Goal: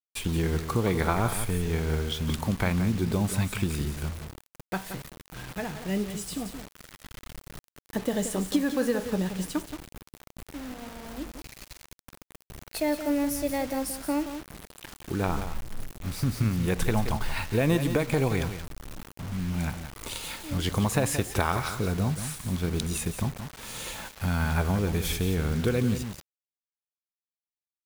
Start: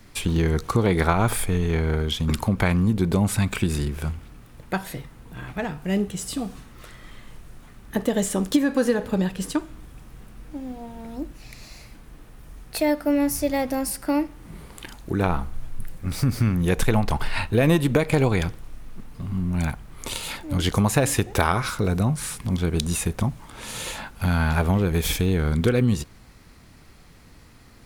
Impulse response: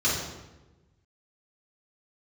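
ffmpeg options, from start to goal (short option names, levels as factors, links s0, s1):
-af "aecho=1:1:176:0.316,acrusher=bits=5:mix=0:aa=0.000001,volume=0.531"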